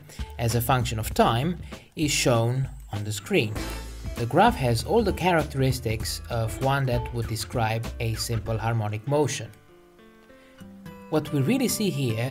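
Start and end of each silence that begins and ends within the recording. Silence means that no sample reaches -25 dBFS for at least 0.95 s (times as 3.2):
9.38–11.13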